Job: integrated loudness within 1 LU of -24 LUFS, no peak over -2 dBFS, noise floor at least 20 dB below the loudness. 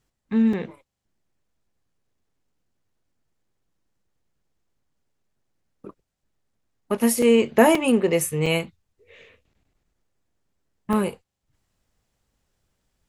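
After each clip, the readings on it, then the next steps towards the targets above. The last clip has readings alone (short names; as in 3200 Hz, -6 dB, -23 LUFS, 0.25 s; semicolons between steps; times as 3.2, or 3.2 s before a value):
dropouts 5; longest dropout 3.5 ms; loudness -21.0 LUFS; peak -2.5 dBFS; loudness target -24.0 LUFS
-> interpolate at 0.53/7.22/7.75/8.46/10.93, 3.5 ms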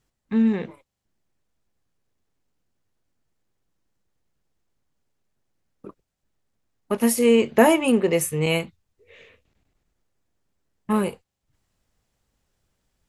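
dropouts 0; loudness -21.0 LUFS; peak -2.5 dBFS; loudness target -24.0 LUFS
-> gain -3 dB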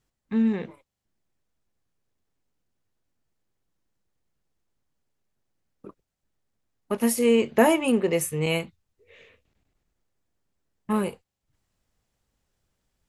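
loudness -24.0 LUFS; peak -5.5 dBFS; noise floor -83 dBFS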